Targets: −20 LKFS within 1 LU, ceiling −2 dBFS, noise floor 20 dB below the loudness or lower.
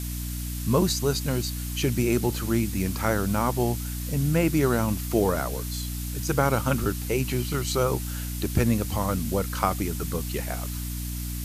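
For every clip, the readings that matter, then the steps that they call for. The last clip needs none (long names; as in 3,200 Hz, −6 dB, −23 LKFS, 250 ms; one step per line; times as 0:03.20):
mains hum 60 Hz; hum harmonics up to 300 Hz; level of the hum −30 dBFS; background noise floor −32 dBFS; target noise floor −47 dBFS; integrated loudness −26.5 LKFS; sample peak −6.5 dBFS; target loudness −20.0 LKFS
→ mains-hum notches 60/120/180/240/300 Hz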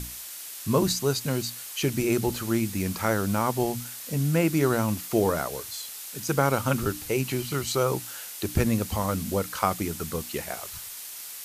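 mains hum none found; background noise floor −40 dBFS; target noise floor −48 dBFS
→ noise reduction from a noise print 8 dB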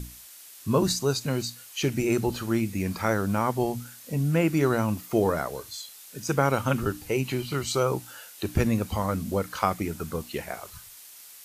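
background noise floor −48 dBFS; integrated loudness −27.0 LKFS; sample peak −7.0 dBFS; target loudness −20.0 LKFS
→ level +7 dB
brickwall limiter −2 dBFS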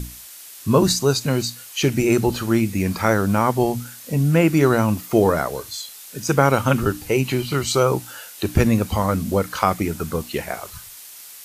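integrated loudness −20.0 LKFS; sample peak −2.0 dBFS; background noise floor −41 dBFS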